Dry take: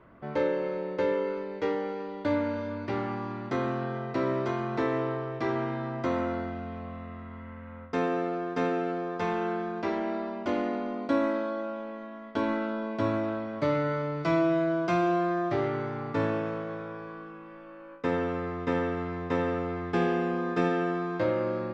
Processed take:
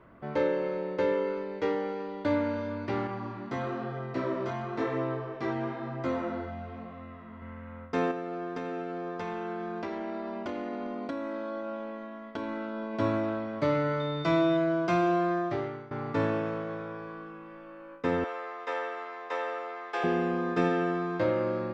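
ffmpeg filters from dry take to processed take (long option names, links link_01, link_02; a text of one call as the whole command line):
ffmpeg -i in.wav -filter_complex "[0:a]asettb=1/sr,asplit=3[link_01][link_02][link_03];[link_01]atrim=end=3.074[link_04];[link_02]atrim=start=3.07:end=7.42,asetpts=PTS-STARTPTS,afade=type=in:duration=0.004:curve=qsin,afade=type=out:start_time=4.346:duration=0.004:curve=qsin,flanger=delay=15:depth=6.7:speed=1[link_05];[link_03]atrim=start=7.416[link_06];[link_04][link_05]acrossfade=duration=0.004:curve1=hsin:curve2=qsin[link_07];[link_07][link_06]acrossfade=duration=0.004:curve1=qsin:curve2=hsin,asettb=1/sr,asplit=3[link_08][link_09][link_10];[link_08]atrim=end=8.114[link_11];[link_09]atrim=start=8.11:end=12.94,asetpts=PTS-STARTPTS,afade=type=in:duration=0.004:curve=qsin,afade=type=out:start_time=4.826:duration=0.004:curve=qsin,acompressor=threshold=-31dB:ratio=6:attack=3.2:release=140:knee=1:detection=peak[link_12];[link_10]atrim=start=12.936[link_13];[link_11][link_12]acrossfade=duration=0.004:curve1=hsin:curve2=qsin[link_14];[link_14][link_13]acrossfade=duration=0.004:curve1=qsin:curve2=hsin,asettb=1/sr,asplit=3[link_15][link_16][link_17];[link_15]atrim=end=14.004[link_18];[link_16]atrim=start=14:end=14.57,asetpts=PTS-STARTPTS,afade=type=in:duration=0.004:curve=qsin,afade=type=out:start_time=0.566:duration=0.004:curve=qsin,aeval=exprs='val(0)+0.00708*sin(2*PI*3600*n/s)':channel_layout=same[link_19];[link_17]atrim=start=14.566[link_20];[link_18][link_19]acrossfade=duration=0.004:curve1=hsin:curve2=qsin[link_21];[link_21][link_20]acrossfade=duration=0.004:curve1=qsin:curve2=hsin,asettb=1/sr,asplit=3[link_22][link_23][link_24];[link_22]atrim=end=18.244[link_25];[link_23]atrim=start=18.24:end=20.04,asetpts=PTS-STARTPTS,afade=type=in:duration=0.004:curve=qsin,afade=type=out:start_time=1.796:duration=0.004:curve=qsin,highpass=frequency=530:width=0.5412,highpass=frequency=530:width=1.3066[link_26];[link_24]atrim=start=20.036[link_27];[link_25][link_26]acrossfade=duration=0.004:curve1=hsin:curve2=qsin[link_28];[link_28][link_27]acrossfade=duration=0.004:curve1=qsin:curve2=hsin,asplit=2[link_29][link_30];[link_29]atrim=end=15.91,asetpts=PTS-STARTPTS,afade=type=out:start_time=15.34:duration=0.57:silence=0.133352[link_31];[link_30]atrim=start=15.91,asetpts=PTS-STARTPTS,afade=type=in:duration=0.004:curve=hsin:silence=0.133352[link_32];[link_31][link_32]concat=n=2:v=0:a=1" out.wav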